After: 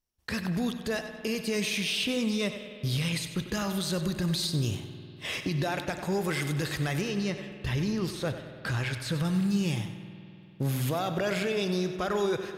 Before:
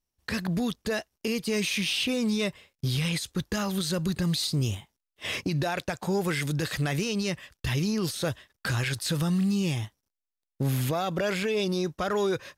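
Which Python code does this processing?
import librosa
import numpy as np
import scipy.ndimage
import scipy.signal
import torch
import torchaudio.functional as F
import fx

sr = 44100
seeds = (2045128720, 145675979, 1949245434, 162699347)

y = fx.high_shelf(x, sr, hz=4900.0, db=-9.0, at=(7.01, 9.25))
y = fx.echo_feedback(y, sr, ms=95, feedback_pct=35, wet_db=-12)
y = fx.rev_spring(y, sr, rt60_s=2.9, pass_ms=(49,), chirp_ms=80, drr_db=9.0)
y = y * 10.0 ** (-2.0 / 20.0)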